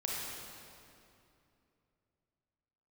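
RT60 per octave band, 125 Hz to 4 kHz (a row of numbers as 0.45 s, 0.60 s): 3.6 s, 3.2 s, 2.9 s, 2.6 s, 2.3 s, 2.0 s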